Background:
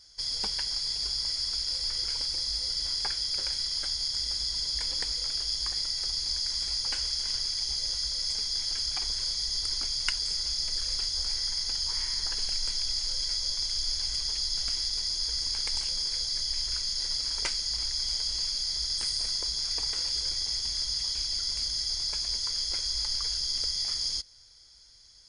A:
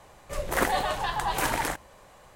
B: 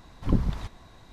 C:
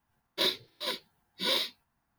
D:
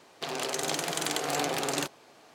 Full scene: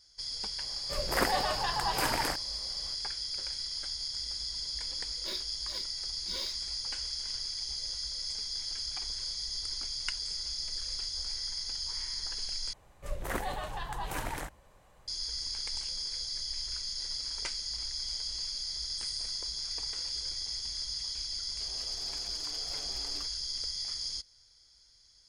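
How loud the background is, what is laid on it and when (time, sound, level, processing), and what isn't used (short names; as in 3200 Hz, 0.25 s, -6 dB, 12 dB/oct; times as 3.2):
background -6 dB
0.6 add A -3.5 dB
4.87 add C -13.5 dB
12.73 replace with A -10.5 dB + low shelf 120 Hz +10.5 dB
21.38 add D -17.5 dB + endless flanger 7.9 ms +1.2 Hz
not used: B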